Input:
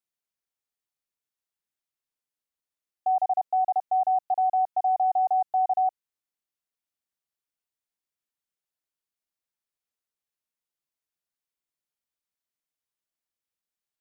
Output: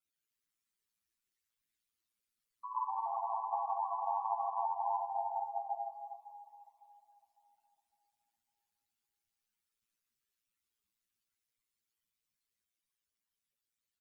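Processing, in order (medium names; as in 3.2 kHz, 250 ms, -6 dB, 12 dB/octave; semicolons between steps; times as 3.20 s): spectral contrast enhancement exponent 3.5; peak limiter -24.5 dBFS, peak gain reduction 5 dB; ever faster or slower copies 158 ms, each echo +2 st, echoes 3; delay 310 ms -10.5 dB; ring modulator 57 Hz; peaking EQ 680 Hz -14 dB 0.96 oct; spring tank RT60 3.6 s, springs 34/45 ms, chirp 55 ms, DRR 10.5 dB; three-phase chorus; trim +7.5 dB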